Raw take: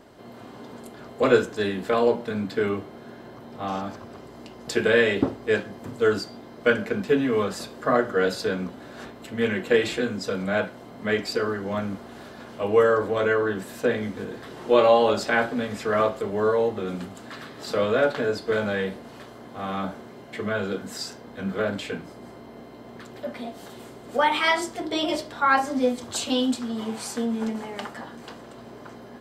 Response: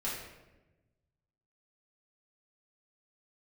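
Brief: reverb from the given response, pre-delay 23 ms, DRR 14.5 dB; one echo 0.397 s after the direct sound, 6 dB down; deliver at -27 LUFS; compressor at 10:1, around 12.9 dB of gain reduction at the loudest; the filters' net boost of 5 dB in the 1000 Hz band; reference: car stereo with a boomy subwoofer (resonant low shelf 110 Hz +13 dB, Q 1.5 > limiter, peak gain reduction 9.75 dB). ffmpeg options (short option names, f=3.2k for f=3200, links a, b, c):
-filter_complex "[0:a]equalizer=f=1k:t=o:g=6.5,acompressor=threshold=-24dB:ratio=10,aecho=1:1:397:0.501,asplit=2[a][b];[1:a]atrim=start_sample=2205,adelay=23[c];[b][c]afir=irnorm=-1:irlink=0,volume=-18.5dB[d];[a][d]amix=inputs=2:normalize=0,lowshelf=f=110:t=q:w=1.5:g=13,volume=5.5dB,alimiter=limit=-17dB:level=0:latency=1"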